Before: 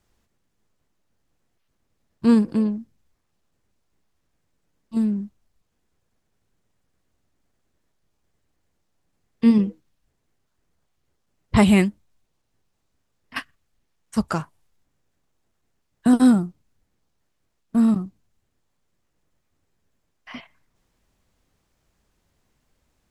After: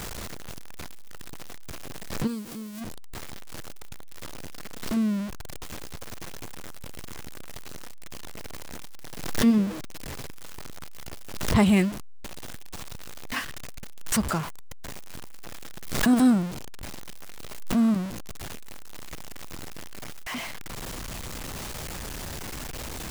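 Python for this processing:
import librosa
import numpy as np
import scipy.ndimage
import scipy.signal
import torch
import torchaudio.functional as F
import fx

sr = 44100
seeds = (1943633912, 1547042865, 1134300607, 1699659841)

y = x + 0.5 * 10.0 ** (-24.0 / 20.0) * np.sign(x)
y = fx.pre_emphasis(y, sr, coefficient=0.8, at=(2.26, 2.8), fade=0.02)
y = fx.pre_swell(y, sr, db_per_s=64.0)
y = y * librosa.db_to_amplitude(-5.5)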